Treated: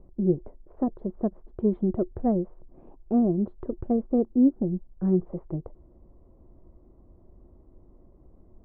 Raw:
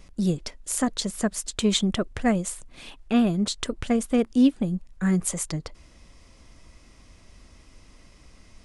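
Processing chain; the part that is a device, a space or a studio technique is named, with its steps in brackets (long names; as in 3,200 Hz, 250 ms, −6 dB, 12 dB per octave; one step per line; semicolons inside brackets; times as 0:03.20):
under water (low-pass filter 810 Hz 24 dB per octave; parametric band 360 Hz +11.5 dB 0.21 octaves)
level −2 dB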